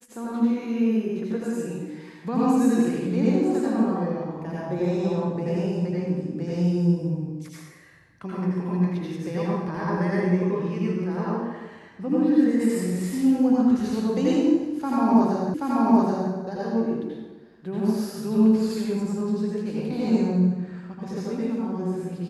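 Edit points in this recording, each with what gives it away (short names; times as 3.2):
15.54 repeat of the last 0.78 s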